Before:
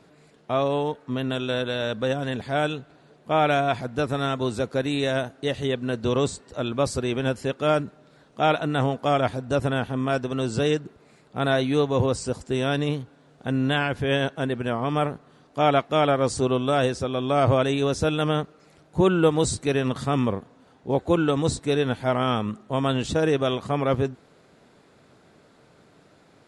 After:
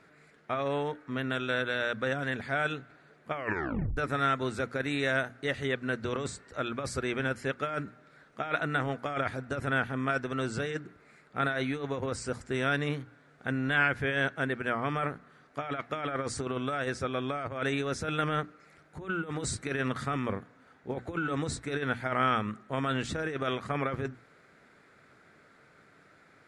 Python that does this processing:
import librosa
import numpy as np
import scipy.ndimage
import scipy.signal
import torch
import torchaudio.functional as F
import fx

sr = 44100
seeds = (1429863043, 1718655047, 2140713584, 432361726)

y = fx.edit(x, sr, fx.tape_stop(start_s=3.32, length_s=0.65), tone=tone)
y = fx.over_compress(y, sr, threshold_db=-23.0, ratio=-0.5)
y = fx.band_shelf(y, sr, hz=1700.0, db=10.0, octaves=1.1)
y = fx.hum_notches(y, sr, base_hz=60, count=5)
y = y * librosa.db_to_amplitude(-8.0)